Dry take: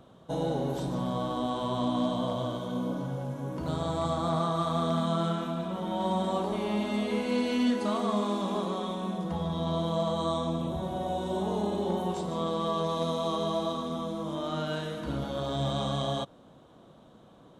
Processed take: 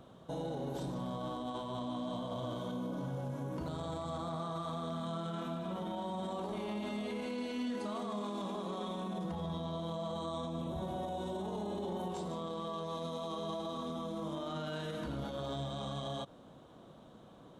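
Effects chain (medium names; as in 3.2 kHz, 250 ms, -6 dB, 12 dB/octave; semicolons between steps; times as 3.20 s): peak limiter -30.5 dBFS, peak gain reduction 11.5 dB; trim -1 dB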